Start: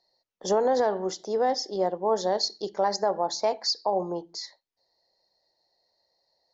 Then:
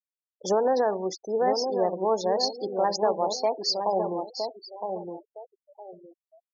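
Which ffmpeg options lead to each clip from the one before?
ffmpeg -i in.wav -filter_complex "[0:a]asplit=2[link_01][link_02];[link_02]adelay=963,lowpass=frequency=1100:poles=1,volume=-5dB,asplit=2[link_03][link_04];[link_04]adelay=963,lowpass=frequency=1100:poles=1,volume=0.31,asplit=2[link_05][link_06];[link_06]adelay=963,lowpass=frequency=1100:poles=1,volume=0.31,asplit=2[link_07][link_08];[link_08]adelay=963,lowpass=frequency=1100:poles=1,volume=0.31[link_09];[link_03][link_05][link_07][link_09]amix=inputs=4:normalize=0[link_10];[link_01][link_10]amix=inputs=2:normalize=0,afftfilt=real='re*gte(hypot(re,im),0.0224)':imag='im*gte(hypot(re,im),0.0224)':win_size=1024:overlap=0.75" out.wav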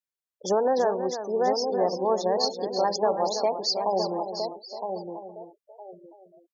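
ffmpeg -i in.wav -af "aecho=1:1:330:0.335" out.wav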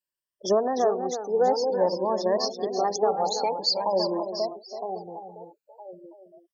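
ffmpeg -i in.wav -af "afftfilt=real='re*pow(10,13/40*sin(2*PI*(1.3*log(max(b,1)*sr/1024/100)/log(2)-(0.5)*(pts-256)/sr)))':imag='im*pow(10,13/40*sin(2*PI*(1.3*log(max(b,1)*sr/1024/100)/log(2)-(0.5)*(pts-256)/sr)))':win_size=1024:overlap=0.75,volume=-1.5dB" out.wav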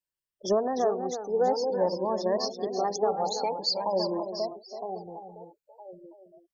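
ffmpeg -i in.wav -af "lowshelf=frequency=120:gain=11,volume=-3.5dB" out.wav

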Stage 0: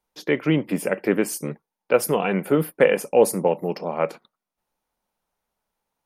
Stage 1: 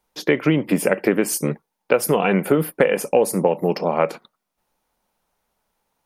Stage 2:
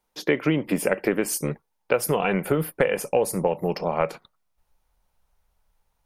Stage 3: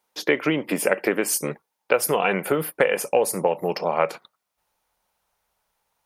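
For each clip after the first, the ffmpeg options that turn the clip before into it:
ffmpeg -i in.wav -af "acompressor=threshold=-20dB:ratio=10,volume=7.5dB" out.wav
ffmpeg -i in.wav -af "asubboost=boost=10:cutoff=82,volume=-3.5dB" out.wav
ffmpeg -i in.wav -af "highpass=frequency=430:poles=1,volume=4dB" out.wav

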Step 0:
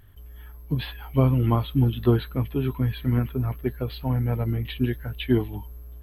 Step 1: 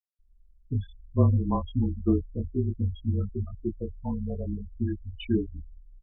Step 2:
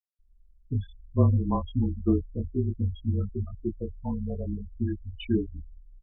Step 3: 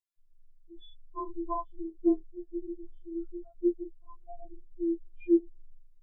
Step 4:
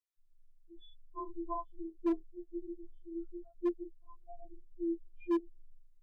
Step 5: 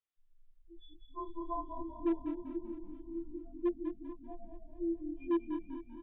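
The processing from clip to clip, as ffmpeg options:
ffmpeg -i in.wav -af "afftfilt=real='re*gte(hypot(re,im),0.112)':imag='im*gte(hypot(re,im),0.112)':win_size=1024:overlap=0.75,flanger=delay=20:depth=2.6:speed=0.49,afreqshift=-28" out.wav
ffmpeg -i in.wav -af anull out.wav
ffmpeg -i in.wav -af "afftfilt=real='re*4*eq(mod(b,16),0)':imag='im*4*eq(mod(b,16),0)':win_size=2048:overlap=0.75" out.wav
ffmpeg -i in.wav -af "asoftclip=type=hard:threshold=-21dB,volume=-5dB" out.wav
ffmpeg -i in.wav -filter_complex "[0:a]asplit=2[link_01][link_02];[link_02]asplit=4[link_03][link_04][link_05][link_06];[link_03]adelay=195,afreqshift=-35,volume=-8dB[link_07];[link_04]adelay=390,afreqshift=-70,volume=-16.4dB[link_08];[link_05]adelay=585,afreqshift=-105,volume=-24.8dB[link_09];[link_06]adelay=780,afreqshift=-140,volume=-33.2dB[link_10];[link_07][link_08][link_09][link_10]amix=inputs=4:normalize=0[link_11];[link_01][link_11]amix=inputs=2:normalize=0,aresample=8000,aresample=44100,asplit=2[link_12][link_13];[link_13]aecho=0:1:220|440|660|880|1100|1320|1540:0.251|0.148|0.0874|0.0516|0.0304|0.018|0.0106[link_14];[link_12][link_14]amix=inputs=2:normalize=0" out.wav

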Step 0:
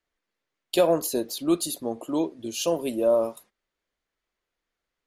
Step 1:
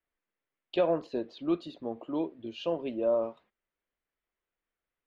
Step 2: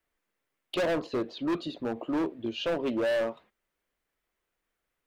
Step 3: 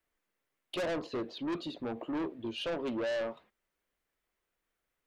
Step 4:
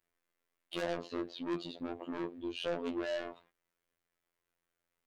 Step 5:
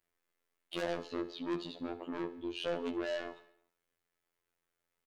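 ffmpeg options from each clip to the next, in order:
ffmpeg -i in.wav -af "lowpass=frequency=3200:width=0.5412,lowpass=frequency=3200:width=1.3066,volume=-6dB" out.wav
ffmpeg -i in.wav -af "asoftclip=type=hard:threshold=-32dB,volume=7dB" out.wav
ffmpeg -i in.wav -af "asoftclip=type=tanh:threshold=-28.5dB,volume=-2dB" out.wav
ffmpeg -i in.wav -af "afftfilt=real='hypot(re,im)*cos(PI*b)':imag='0':win_size=2048:overlap=0.75,volume=1dB" out.wav
ffmpeg -i in.wav -af "aecho=1:1:72|144|216|288|360:0.15|0.0838|0.0469|0.0263|0.0147" out.wav

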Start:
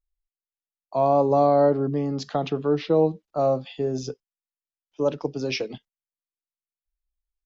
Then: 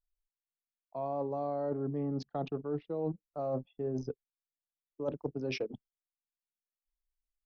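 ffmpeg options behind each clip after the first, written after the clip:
ffmpeg -i in.wav -af "anlmdn=25.1,highshelf=frequency=3100:gain=-9.5,areverse,acompressor=threshold=-27dB:ratio=20,areverse,volume=-3.5dB" out.wav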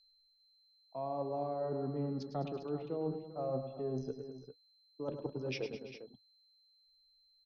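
ffmpeg -i in.wav -af "flanger=delay=4.8:depth=1.5:regen=-68:speed=0.51:shape=triangular,aeval=exprs='val(0)+0.000447*sin(2*PI*4100*n/s)':channel_layout=same,aecho=1:1:104|113|208|336|400:0.316|0.15|0.2|0.119|0.251,volume=1dB" out.wav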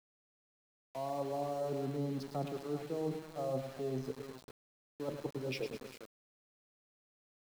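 ffmpeg -i in.wav -af "aeval=exprs='val(0)*gte(abs(val(0)),0.00447)':channel_layout=same" out.wav

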